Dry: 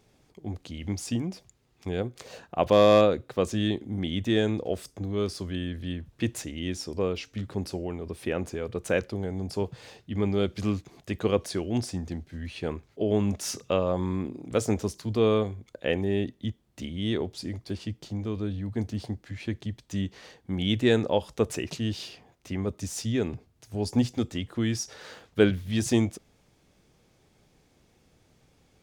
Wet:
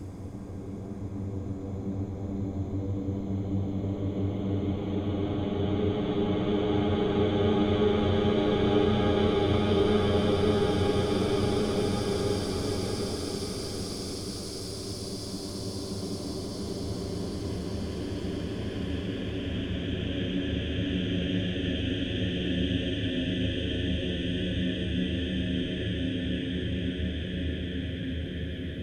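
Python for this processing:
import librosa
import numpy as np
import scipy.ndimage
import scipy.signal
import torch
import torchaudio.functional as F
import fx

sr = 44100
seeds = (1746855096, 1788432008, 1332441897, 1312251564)

y = fx.local_reverse(x, sr, ms=36.0)
y = fx.cheby_harmonics(y, sr, harmonics=(6,), levels_db=(-13,), full_scale_db=-7.5)
y = fx.paulstretch(y, sr, seeds[0], factor=36.0, window_s=0.25, from_s=4.95)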